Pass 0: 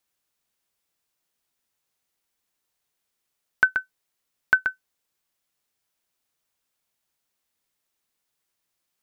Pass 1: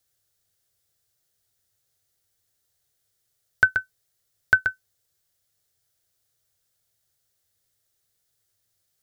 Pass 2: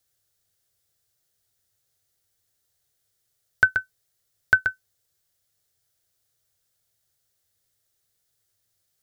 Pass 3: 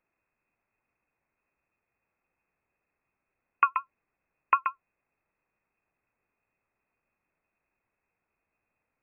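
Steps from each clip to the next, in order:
graphic EQ with 15 bands 100 Hz +12 dB, 250 Hz −12 dB, 1,000 Hz −12 dB, 2,500 Hz −9 dB; level +6 dB
no processing that can be heard
samples in bit-reversed order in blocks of 16 samples; pitch vibrato 12 Hz 55 cents; voice inversion scrambler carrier 2,600 Hz

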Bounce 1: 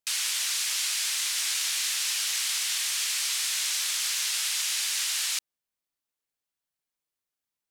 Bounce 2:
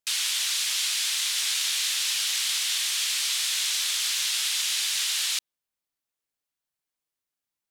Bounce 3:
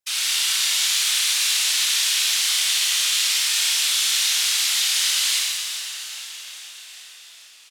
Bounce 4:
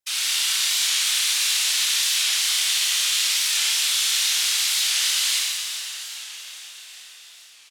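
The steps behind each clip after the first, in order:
dynamic equaliser 3,500 Hz, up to +5 dB, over −43 dBFS, Q 1.9
random phases in short frames; echo with shifted repeats 403 ms, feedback 64%, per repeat −62 Hz, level −11 dB; four-comb reverb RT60 1.8 s, combs from 25 ms, DRR −4 dB
wow of a warped record 45 rpm, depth 100 cents; level −1 dB

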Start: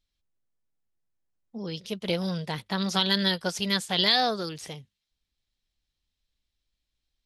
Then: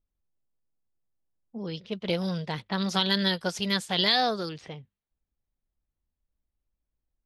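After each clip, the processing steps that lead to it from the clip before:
low-pass that shuts in the quiet parts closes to 990 Hz, open at −25.5 dBFS
high-shelf EQ 5,400 Hz −4.5 dB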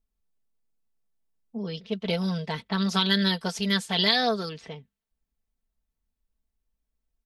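comb filter 4.5 ms, depth 60%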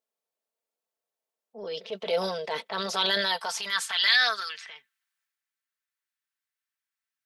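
high-pass filter sweep 540 Hz → 1,600 Hz, 0:02.98–0:04.09
transient designer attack −6 dB, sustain +6 dB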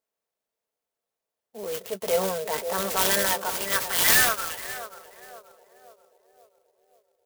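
feedback echo with a band-pass in the loop 534 ms, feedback 58%, band-pass 460 Hz, level −8 dB
converter with an unsteady clock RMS 0.075 ms
level +3 dB

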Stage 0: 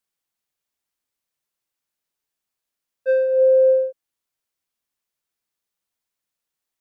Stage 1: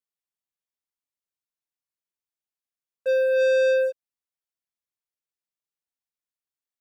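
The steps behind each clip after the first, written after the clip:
leveller curve on the samples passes 3
level −7 dB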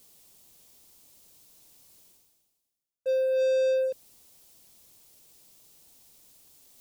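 parametric band 1,600 Hz −13.5 dB 1.7 octaves
reversed playback
upward compression, threshold −26 dBFS
reversed playback
level −1.5 dB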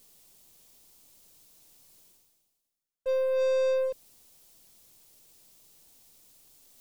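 gain on one half-wave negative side −3 dB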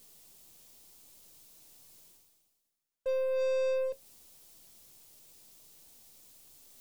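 in parallel at +2.5 dB: downward compressor, threshold −36 dBFS, peak gain reduction 12 dB
on the sum: tuned comb filter 77 Hz, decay 0.15 s, harmonics all, mix 60%
level −3 dB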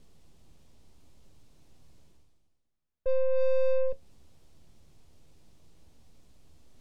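bad sample-rate conversion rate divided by 2×, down filtered, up hold
RIAA equalisation playback

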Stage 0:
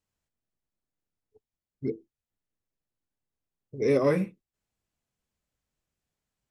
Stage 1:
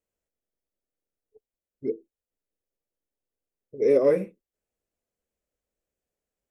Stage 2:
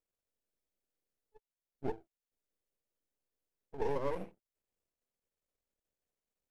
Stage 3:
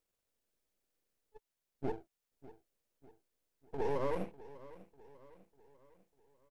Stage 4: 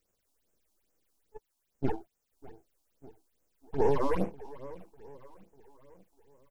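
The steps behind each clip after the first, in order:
octave-band graphic EQ 125/500/1,000/4,000 Hz −9/+10/−5/−6 dB; level −2.5 dB
half-wave rectification; downward compressor 6 to 1, threshold −28 dBFS, peak gain reduction 11 dB; level −1.5 dB
brickwall limiter −29 dBFS, peak gain reduction 7.5 dB; repeating echo 597 ms, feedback 48%, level −18 dB; level +5 dB
all-pass phaser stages 6, 2.4 Hz, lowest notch 120–4,200 Hz; level +9 dB

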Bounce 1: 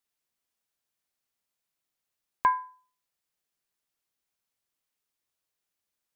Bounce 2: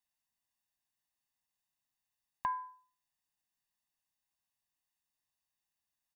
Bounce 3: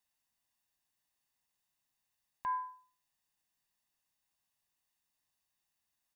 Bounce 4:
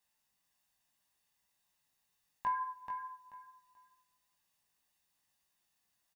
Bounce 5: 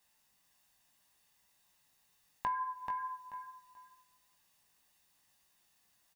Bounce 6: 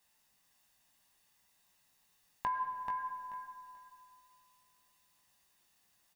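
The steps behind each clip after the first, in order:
comb filter 1.1 ms, depth 95%; brickwall limiter −13 dBFS, peak gain reduction 5.5 dB; downward compressor, threshold −25 dBFS, peak gain reduction 7.5 dB; level −7 dB
brickwall limiter −32.5 dBFS, peak gain reduction 11 dB; level +4 dB
chorus effect 1.8 Hz, delay 16.5 ms, depth 2.5 ms; repeating echo 434 ms, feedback 23%, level −7 dB; coupled-rooms reverb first 0.42 s, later 1.7 s, from −18 dB, DRR 7 dB; level +6 dB
downward compressor 2.5 to 1, threshold −44 dBFS, peak gain reduction 9.5 dB; level +7.5 dB
comb and all-pass reverb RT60 2.7 s, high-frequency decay 0.5×, pre-delay 65 ms, DRR 10 dB

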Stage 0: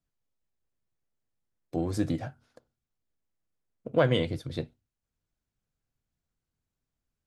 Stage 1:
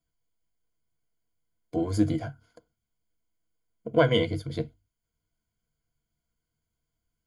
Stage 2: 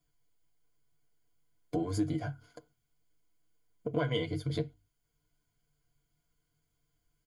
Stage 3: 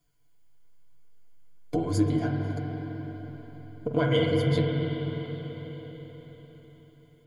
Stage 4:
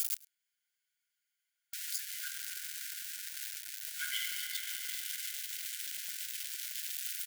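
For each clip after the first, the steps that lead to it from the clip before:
EQ curve with evenly spaced ripples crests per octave 1.8, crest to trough 13 dB
downward compressor 3 to 1, threshold −36 dBFS, peak gain reduction 15.5 dB; comb filter 6.9 ms, depth 53%; level +3 dB
convolution reverb RT60 4.8 s, pre-delay 41 ms, DRR 0 dB; level +5 dB
spike at every zero crossing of −19 dBFS; linear-phase brick-wall high-pass 1,400 Hz; single-tap delay 104 ms −23.5 dB; level −5 dB

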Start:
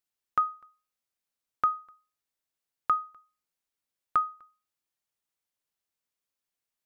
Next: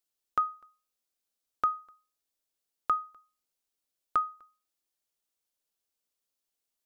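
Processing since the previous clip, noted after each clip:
graphic EQ with 10 bands 125 Hz −12 dB, 1,000 Hz −4 dB, 2,000 Hz −6 dB
level +3 dB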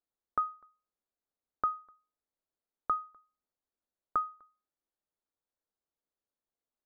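moving average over 16 samples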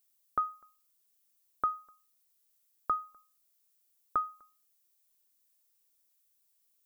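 background noise violet −73 dBFS

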